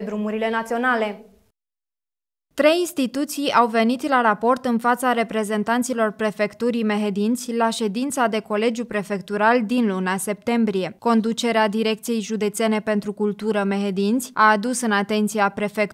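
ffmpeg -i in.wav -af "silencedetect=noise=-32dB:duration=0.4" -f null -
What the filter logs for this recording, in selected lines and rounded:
silence_start: 1.17
silence_end: 2.58 | silence_duration: 1.41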